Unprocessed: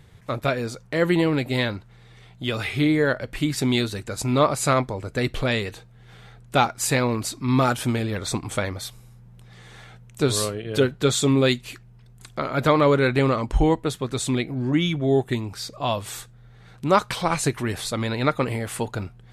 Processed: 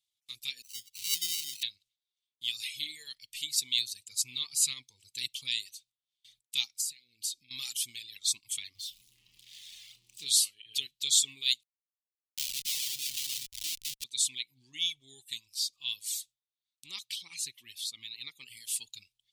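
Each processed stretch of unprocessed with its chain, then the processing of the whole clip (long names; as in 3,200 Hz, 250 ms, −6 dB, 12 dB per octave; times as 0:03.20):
0:00.62–0:01.63: all-pass dispersion lows, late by 131 ms, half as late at 1,200 Hz + sample-rate reduction 1,700 Hz
0:03.77–0:05.66: high-pass filter 100 Hz + low-shelf EQ 160 Hz +10.5 dB
0:06.80–0:07.51: dynamic equaliser 1,600 Hz, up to +7 dB, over −39 dBFS, Q 1.2 + downward compressor 16 to 1, threshold −30 dBFS + Butterworth band-reject 1,200 Hz, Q 0.7
0:08.75–0:10.26: converter with a step at zero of −28.5 dBFS + low-pass filter 1,300 Hz 6 dB per octave + flutter between parallel walls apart 5.2 metres, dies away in 0.24 s
0:11.63–0:14.04: delay that plays each chunk backwards 281 ms, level −8 dB + mains-hum notches 50/100/150/200/250/300/350/400/450 Hz + comparator with hysteresis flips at −24.5 dBFS
0:16.86–0:18.57: high-pass filter 80 Hz + parametric band 8,400 Hz −9.5 dB 2.2 octaves
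whole clip: noise gate with hold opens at −36 dBFS; inverse Chebyshev high-pass filter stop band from 1,600 Hz, stop band 40 dB; reverb reduction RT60 1.1 s; level +2.5 dB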